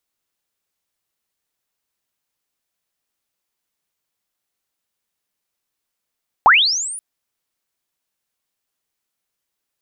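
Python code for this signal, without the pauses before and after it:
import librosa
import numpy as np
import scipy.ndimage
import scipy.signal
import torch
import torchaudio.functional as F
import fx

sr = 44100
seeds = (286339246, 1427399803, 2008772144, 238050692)

y = fx.chirp(sr, length_s=0.53, from_hz=730.0, to_hz=10000.0, law='linear', from_db=-5.0, to_db=-28.0)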